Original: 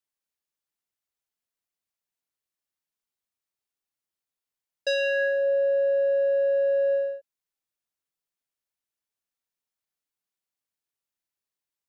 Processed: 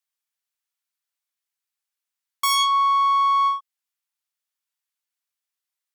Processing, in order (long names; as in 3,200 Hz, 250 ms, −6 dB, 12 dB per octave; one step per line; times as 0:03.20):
stylus tracing distortion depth 0.19 ms
high-pass filter 510 Hz 12 dB per octave
wrong playback speed 7.5 ips tape played at 15 ips
level +6.5 dB